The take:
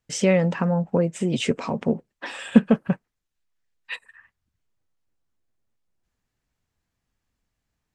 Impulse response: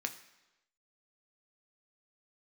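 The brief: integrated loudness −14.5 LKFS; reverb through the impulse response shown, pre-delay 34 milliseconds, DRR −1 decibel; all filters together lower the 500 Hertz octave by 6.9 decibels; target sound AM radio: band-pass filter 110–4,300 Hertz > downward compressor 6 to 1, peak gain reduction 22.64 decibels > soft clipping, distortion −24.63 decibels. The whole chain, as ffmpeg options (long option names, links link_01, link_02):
-filter_complex "[0:a]equalizer=frequency=500:width_type=o:gain=-8,asplit=2[link_01][link_02];[1:a]atrim=start_sample=2205,adelay=34[link_03];[link_02][link_03]afir=irnorm=-1:irlink=0,volume=-0.5dB[link_04];[link_01][link_04]amix=inputs=2:normalize=0,highpass=110,lowpass=4300,acompressor=threshold=-33dB:ratio=6,asoftclip=threshold=-22.5dB,volume=23dB"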